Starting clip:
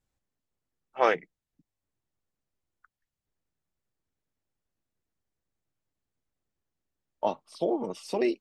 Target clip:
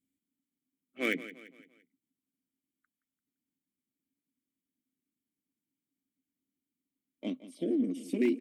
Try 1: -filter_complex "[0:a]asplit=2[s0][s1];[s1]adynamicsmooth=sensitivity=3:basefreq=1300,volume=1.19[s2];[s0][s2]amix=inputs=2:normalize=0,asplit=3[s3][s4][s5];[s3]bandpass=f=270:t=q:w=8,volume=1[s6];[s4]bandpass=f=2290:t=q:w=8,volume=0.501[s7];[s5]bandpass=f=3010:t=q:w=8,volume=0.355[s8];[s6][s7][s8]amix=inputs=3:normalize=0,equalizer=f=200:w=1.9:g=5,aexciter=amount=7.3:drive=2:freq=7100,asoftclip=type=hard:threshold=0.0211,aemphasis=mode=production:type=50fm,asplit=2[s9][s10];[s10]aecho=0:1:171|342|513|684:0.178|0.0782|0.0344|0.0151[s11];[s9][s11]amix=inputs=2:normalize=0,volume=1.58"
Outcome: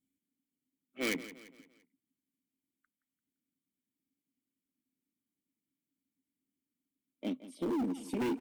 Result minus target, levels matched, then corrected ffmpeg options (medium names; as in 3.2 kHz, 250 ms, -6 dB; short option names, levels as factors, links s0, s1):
hard clipper: distortion +25 dB
-filter_complex "[0:a]asplit=2[s0][s1];[s1]adynamicsmooth=sensitivity=3:basefreq=1300,volume=1.19[s2];[s0][s2]amix=inputs=2:normalize=0,asplit=3[s3][s4][s5];[s3]bandpass=f=270:t=q:w=8,volume=1[s6];[s4]bandpass=f=2290:t=q:w=8,volume=0.501[s7];[s5]bandpass=f=3010:t=q:w=8,volume=0.355[s8];[s6][s7][s8]amix=inputs=3:normalize=0,equalizer=f=200:w=1.9:g=5,aexciter=amount=7.3:drive=2:freq=7100,asoftclip=type=hard:threshold=0.0708,aemphasis=mode=production:type=50fm,asplit=2[s9][s10];[s10]aecho=0:1:171|342|513|684:0.178|0.0782|0.0344|0.0151[s11];[s9][s11]amix=inputs=2:normalize=0,volume=1.58"